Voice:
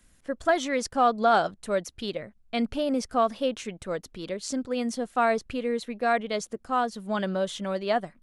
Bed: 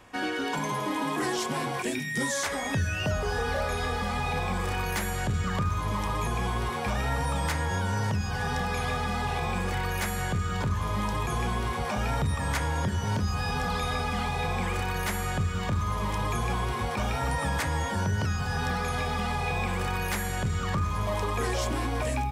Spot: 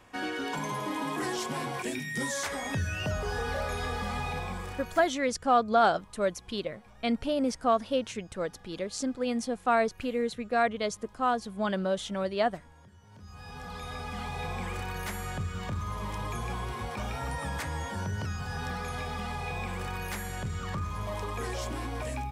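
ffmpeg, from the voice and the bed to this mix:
ffmpeg -i stem1.wav -i stem2.wav -filter_complex "[0:a]adelay=4500,volume=-1.5dB[link_01];[1:a]volume=18dB,afade=type=out:start_time=4.18:duration=0.96:silence=0.0630957,afade=type=in:start_time=13.11:duration=1.3:silence=0.0841395[link_02];[link_01][link_02]amix=inputs=2:normalize=0" out.wav

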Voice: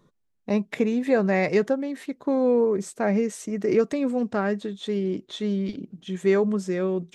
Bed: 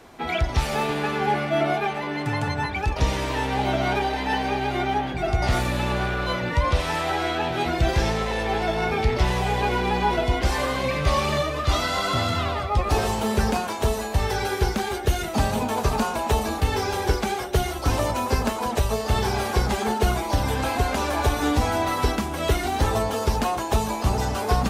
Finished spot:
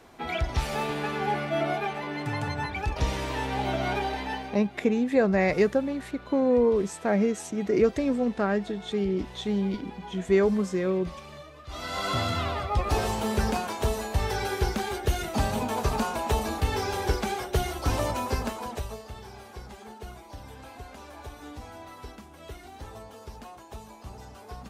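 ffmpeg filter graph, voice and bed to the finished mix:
ffmpeg -i stem1.wav -i stem2.wav -filter_complex "[0:a]adelay=4050,volume=-1dB[link_01];[1:a]volume=12dB,afade=type=out:start_time=4.13:duration=0.49:silence=0.158489,afade=type=in:start_time=11.69:duration=0.41:silence=0.141254,afade=type=out:start_time=18.1:duration=1.04:silence=0.149624[link_02];[link_01][link_02]amix=inputs=2:normalize=0" out.wav

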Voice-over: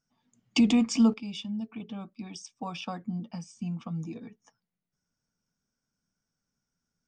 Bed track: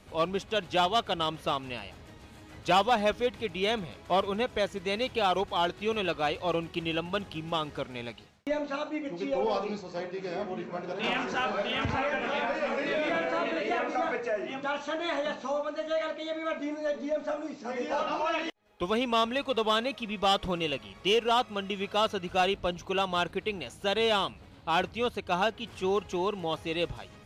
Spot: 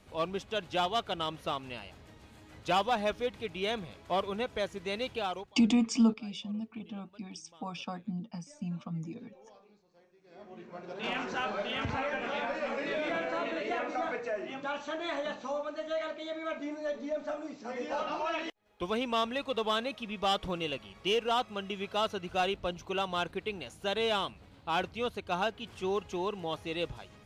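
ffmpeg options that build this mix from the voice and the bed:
ffmpeg -i stem1.wav -i stem2.wav -filter_complex "[0:a]adelay=5000,volume=-3dB[link_01];[1:a]volume=20dB,afade=type=out:start_time=5.11:duration=0.44:silence=0.0630957,afade=type=in:start_time=10.24:duration=0.97:silence=0.0595662[link_02];[link_01][link_02]amix=inputs=2:normalize=0" out.wav

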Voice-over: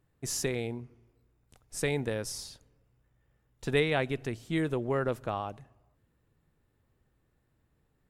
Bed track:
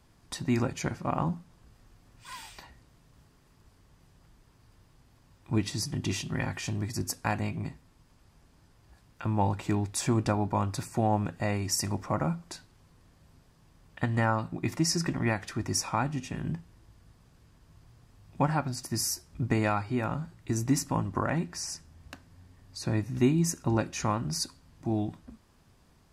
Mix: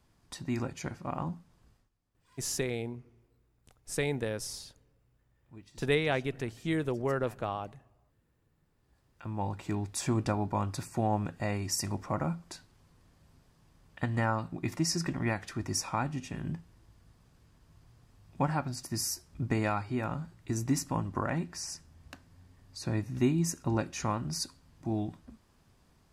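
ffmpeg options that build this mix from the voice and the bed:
ffmpeg -i stem1.wav -i stem2.wav -filter_complex "[0:a]adelay=2150,volume=-1dB[link_01];[1:a]volume=14.5dB,afade=type=out:start_time=1.69:duration=0.21:silence=0.133352,afade=type=in:start_time=8.59:duration=1.49:silence=0.0944061[link_02];[link_01][link_02]amix=inputs=2:normalize=0" out.wav

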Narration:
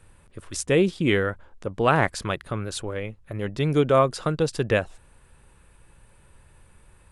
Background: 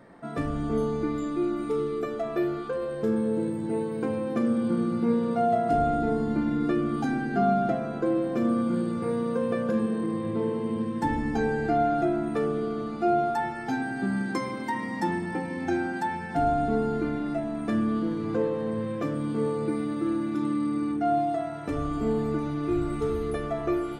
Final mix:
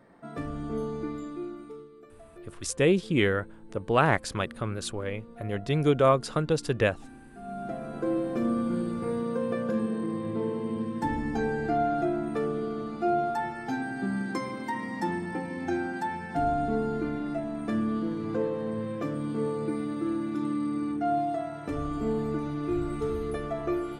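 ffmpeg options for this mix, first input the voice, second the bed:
ffmpeg -i stem1.wav -i stem2.wav -filter_complex "[0:a]adelay=2100,volume=-2.5dB[link_01];[1:a]volume=13.5dB,afade=type=out:start_time=1.06:duration=0.83:silence=0.158489,afade=type=in:start_time=7.42:duration=0.7:silence=0.112202[link_02];[link_01][link_02]amix=inputs=2:normalize=0" out.wav

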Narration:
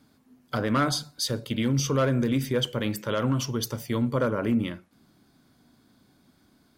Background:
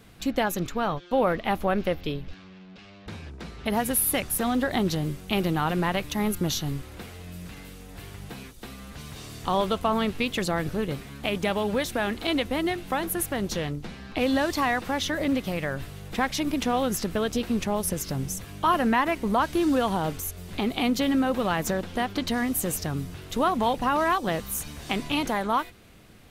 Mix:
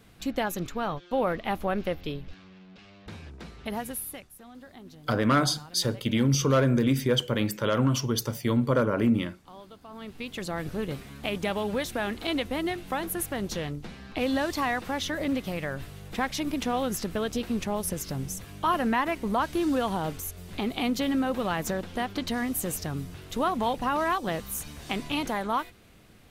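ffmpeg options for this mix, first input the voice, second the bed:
ffmpeg -i stem1.wav -i stem2.wav -filter_complex "[0:a]adelay=4550,volume=1.5dB[link_01];[1:a]volume=16.5dB,afade=type=out:start_time=3.39:duration=0.91:silence=0.105925,afade=type=in:start_time=9.88:duration=0.96:silence=0.1[link_02];[link_01][link_02]amix=inputs=2:normalize=0" out.wav

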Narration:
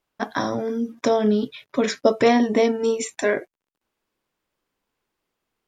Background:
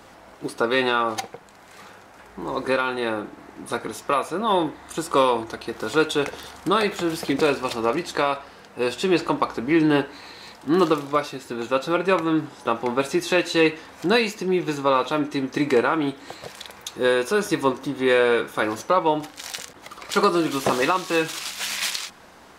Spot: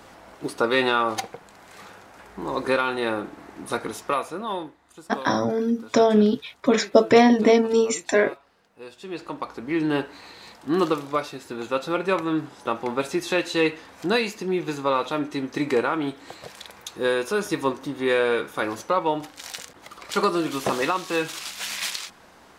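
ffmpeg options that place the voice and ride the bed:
ffmpeg -i stem1.wav -i stem2.wav -filter_complex "[0:a]adelay=4900,volume=2dB[link_01];[1:a]volume=14.5dB,afade=type=out:start_time=3.87:duration=0.9:silence=0.133352,afade=type=in:start_time=8.99:duration=1.17:silence=0.188365[link_02];[link_01][link_02]amix=inputs=2:normalize=0" out.wav

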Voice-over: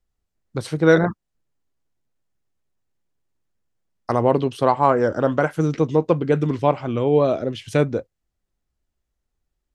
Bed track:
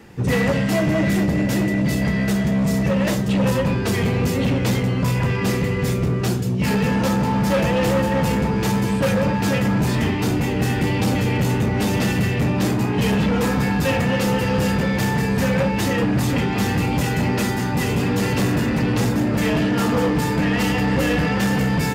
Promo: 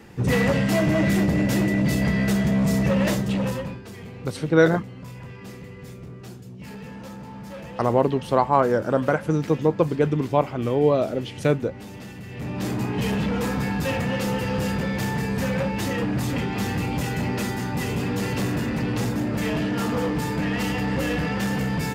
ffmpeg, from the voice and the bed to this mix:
ffmpeg -i stem1.wav -i stem2.wav -filter_complex "[0:a]adelay=3700,volume=-2dB[link_01];[1:a]volume=12dB,afade=type=out:start_time=3.06:duration=0.76:silence=0.133352,afade=type=in:start_time=12.26:duration=0.53:silence=0.211349[link_02];[link_01][link_02]amix=inputs=2:normalize=0" out.wav

